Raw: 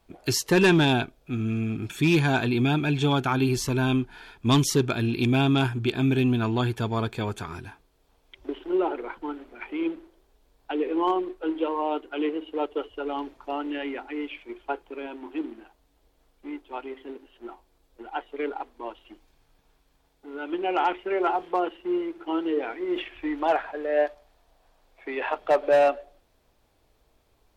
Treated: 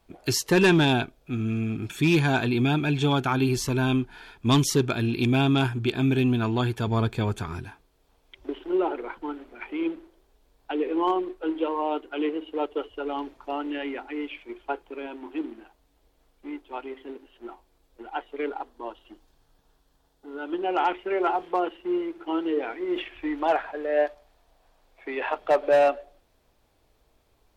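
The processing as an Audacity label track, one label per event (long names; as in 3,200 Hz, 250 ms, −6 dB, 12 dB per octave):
6.870000	7.640000	low-shelf EQ 200 Hz +7 dB
18.590000	20.780000	parametric band 2,300 Hz −8.5 dB 0.37 octaves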